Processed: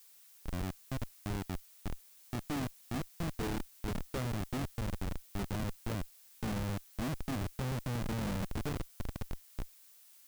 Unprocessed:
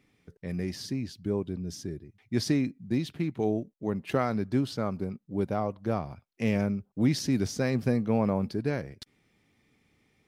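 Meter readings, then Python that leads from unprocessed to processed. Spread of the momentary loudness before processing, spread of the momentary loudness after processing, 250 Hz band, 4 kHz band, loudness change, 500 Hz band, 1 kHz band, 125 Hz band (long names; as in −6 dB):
10 LU, 10 LU, −11.0 dB, −6.5 dB, −9.5 dB, −12.5 dB, −7.0 dB, −6.0 dB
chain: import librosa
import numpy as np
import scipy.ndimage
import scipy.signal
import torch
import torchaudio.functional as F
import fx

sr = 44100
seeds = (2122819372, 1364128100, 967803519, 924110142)

y = fx.high_shelf(x, sr, hz=2800.0, db=-8.5)
y = fx.echo_diffused(y, sr, ms=1176, feedback_pct=41, wet_db=-9.5)
y = fx.schmitt(y, sr, flips_db=-27.5)
y = fx.dmg_noise_colour(y, sr, seeds[0], colour='blue', level_db=-55.0)
y = F.gain(torch.from_numpy(y), -4.5).numpy()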